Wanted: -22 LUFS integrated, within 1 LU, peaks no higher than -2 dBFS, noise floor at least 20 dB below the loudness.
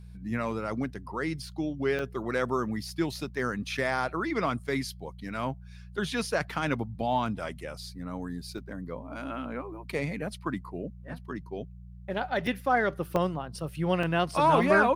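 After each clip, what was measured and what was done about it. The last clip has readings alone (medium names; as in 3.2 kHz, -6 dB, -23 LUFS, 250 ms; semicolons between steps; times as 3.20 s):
dropouts 6; longest dropout 3.2 ms; hum 60 Hz; highest harmonic 180 Hz; hum level -43 dBFS; loudness -31.0 LUFS; peak level -10.0 dBFS; loudness target -22.0 LUFS
-> interpolate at 1.99/8.58/12.47/13.16/14.03/14.63 s, 3.2 ms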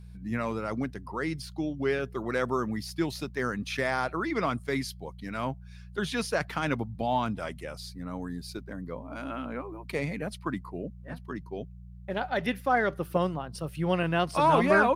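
dropouts 0; hum 60 Hz; highest harmonic 180 Hz; hum level -43 dBFS
-> de-hum 60 Hz, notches 3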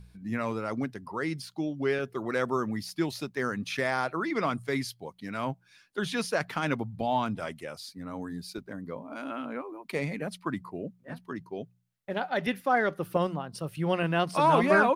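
hum not found; loudness -31.0 LUFS; peak level -10.0 dBFS; loudness target -22.0 LUFS
-> trim +9 dB; peak limiter -2 dBFS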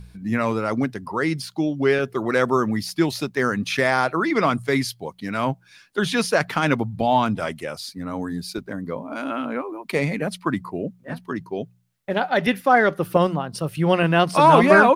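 loudness -22.0 LUFS; peak level -2.0 dBFS; noise floor -56 dBFS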